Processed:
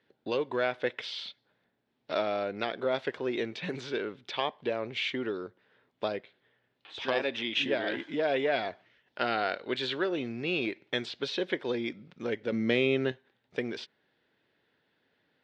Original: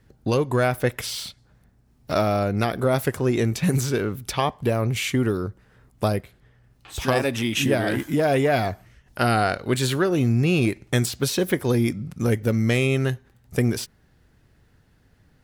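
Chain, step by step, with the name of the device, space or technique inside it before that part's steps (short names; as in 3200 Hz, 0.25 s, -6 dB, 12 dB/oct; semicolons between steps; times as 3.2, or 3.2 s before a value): phone earpiece (speaker cabinet 390–4000 Hz, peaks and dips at 750 Hz -4 dB, 1200 Hz -6 dB, 3500 Hz +5 dB); 12.52–13.12 bell 190 Hz +9 dB 2.7 oct; gain -5 dB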